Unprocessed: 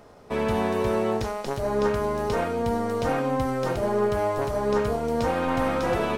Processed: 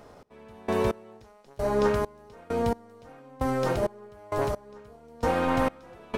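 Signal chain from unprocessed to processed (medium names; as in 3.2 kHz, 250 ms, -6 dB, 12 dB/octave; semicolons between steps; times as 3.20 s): trance gate "x..x...x" 66 bpm -24 dB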